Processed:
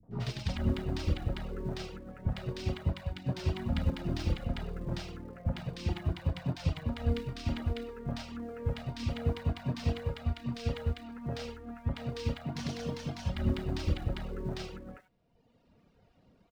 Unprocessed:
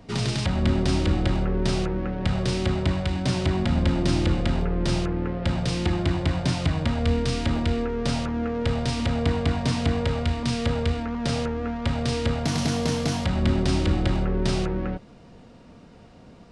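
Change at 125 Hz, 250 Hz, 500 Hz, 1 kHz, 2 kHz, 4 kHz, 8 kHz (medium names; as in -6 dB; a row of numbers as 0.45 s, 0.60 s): -9.0 dB, -12.5 dB, -12.0 dB, -13.5 dB, -12.5 dB, -12.5 dB, -16.5 dB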